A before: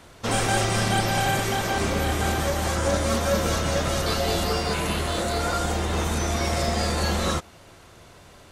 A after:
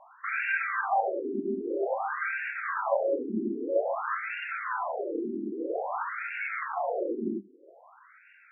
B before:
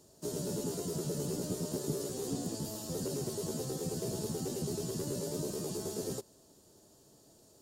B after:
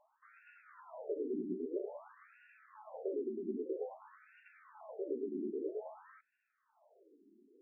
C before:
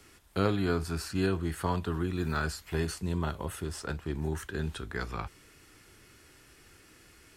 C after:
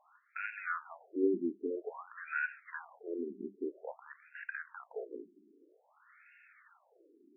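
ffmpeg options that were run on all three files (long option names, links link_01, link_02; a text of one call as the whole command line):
ffmpeg -i in.wav -af "bandreject=frequency=50:width_type=h:width=6,bandreject=frequency=100:width_type=h:width=6,bandreject=frequency=150:width_type=h:width=6,bandreject=frequency=200:width_type=h:width=6,afftfilt=real='re*between(b*sr/1024,280*pow(2000/280,0.5+0.5*sin(2*PI*0.51*pts/sr))/1.41,280*pow(2000/280,0.5+0.5*sin(2*PI*0.51*pts/sr))*1.41)':imag='im*between(b*sr/1024,280*pow(2000/280,0.5+0.5*sin(2*PI*0.51*pts/sr))/1.41,280*pow(2000/280,0.5+0.5*sin(2*PI*0.51*pts/sr))*1.41)':win_size=1024:overlap=0.75,volume=2dB" out.wav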